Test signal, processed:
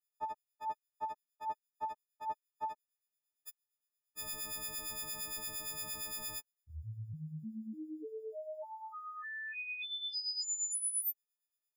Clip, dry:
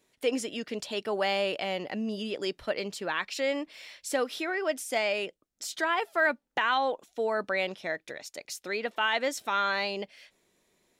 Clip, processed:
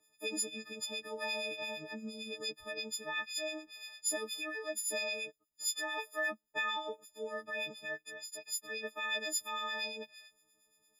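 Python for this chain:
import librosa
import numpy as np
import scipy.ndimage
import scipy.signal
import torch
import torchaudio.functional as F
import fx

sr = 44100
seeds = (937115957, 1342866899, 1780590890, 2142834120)

y = fx.freq_snap(x, sr, grid_st=6)
y = fx.harmonic_tremolo(y, sr, hz=8.7, depth_pct=70, crossover_hz=1700.0)
y = fx.dynamic_eq(y, sr, hz=1000.0, q=1.7, threshold_db=-41.0, ratio=4.0, max_db=-5)
y = y * librosa.db_to_amplitude(-8.5)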